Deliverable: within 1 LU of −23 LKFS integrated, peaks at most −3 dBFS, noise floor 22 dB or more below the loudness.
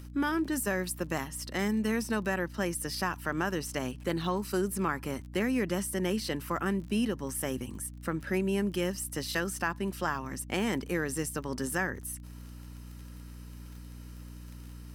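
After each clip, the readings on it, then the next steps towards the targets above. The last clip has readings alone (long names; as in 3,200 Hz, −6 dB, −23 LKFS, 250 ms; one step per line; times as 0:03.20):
crackle rate 25 per second; mains hum 60 Hz; hum harmonics up to 300 Hz; level of the hum −43 dBFS; integrated loudness −32.0 LKFS; sample peak −15.5 dBFS; target loudness −23.0 LKFS
→ click removal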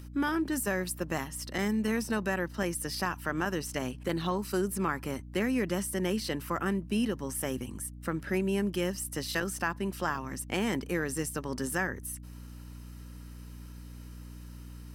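crackle rate 0.20 per second; mains hum 60 Hz; hum harmonics up to 300 Hz; level of the hum −43 dBFS
→ hum removal 60 Hz, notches 5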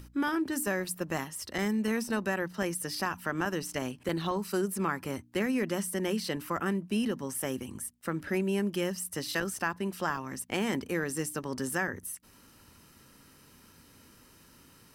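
mains hum none found; integrated loudness −32.5 LKFS; sample peak −15.5 dBFS; target loudness −23.0 LKFS
→ level +9.5 dB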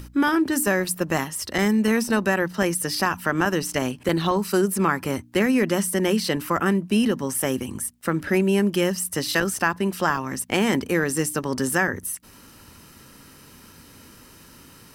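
integrated loudness −23.0 LKFS; sample peak −6.0 dBFS; background noise floor −49 dBFS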